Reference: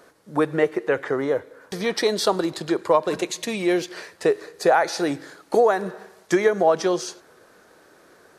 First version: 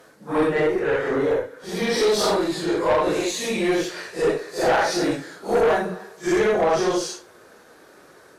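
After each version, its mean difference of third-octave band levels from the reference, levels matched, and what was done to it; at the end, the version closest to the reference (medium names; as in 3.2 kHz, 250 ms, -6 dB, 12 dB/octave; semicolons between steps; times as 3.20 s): 5.5 dB: phase randomisation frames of 200 ms; valve stage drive 18 dB, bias 0.25; trim +4 dB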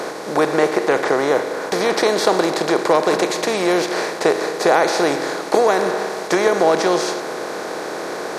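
10.0 dB: spectral levelling over time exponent 0.4; bass shelf 92 Hz -11 dB; trim -1 dB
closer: first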